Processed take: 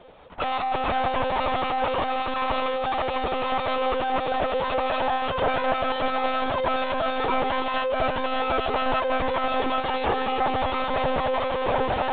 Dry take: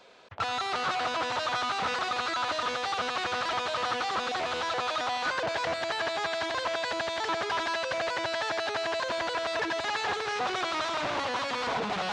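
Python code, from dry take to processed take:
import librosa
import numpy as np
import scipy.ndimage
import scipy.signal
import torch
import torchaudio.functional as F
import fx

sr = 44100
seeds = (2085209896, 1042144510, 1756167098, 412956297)

y = fx.lower_of_two(x, sr, delay_ms=0.32)
y = fx.band_shelf(y, sr, hz=670.0, db=10.0, octaves=2.9)
y = fx.echo_alternate(y, sr, ms=577, hz=900.0, feedback_pct=60, wet_db=-11.5)
y = fx.lpc_monotone(y, sr, seeds[0], pitch_hz=260.0, order=16)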